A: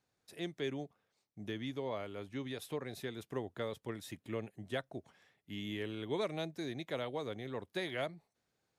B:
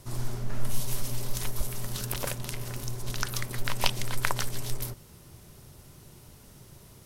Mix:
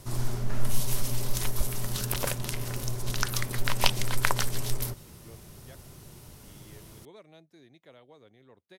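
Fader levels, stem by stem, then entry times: -15.0, +2.5 dB; 0.95, 0.00 s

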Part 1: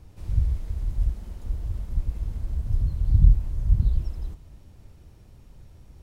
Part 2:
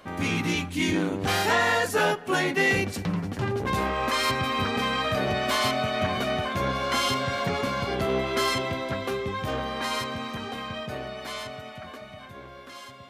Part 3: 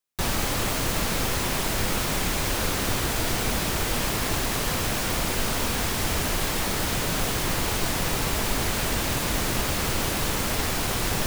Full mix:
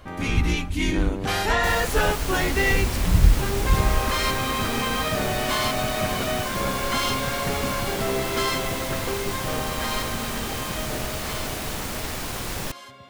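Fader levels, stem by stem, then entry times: -0.5, 0.0, -4.5 dB; 0.00, 0.00, 1.45 s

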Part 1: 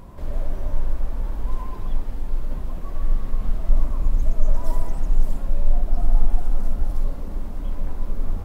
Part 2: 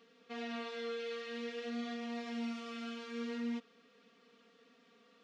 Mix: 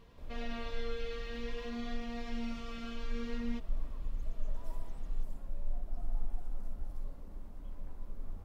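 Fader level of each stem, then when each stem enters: -18.0, -1.0 dB; 0.00, 0.00 s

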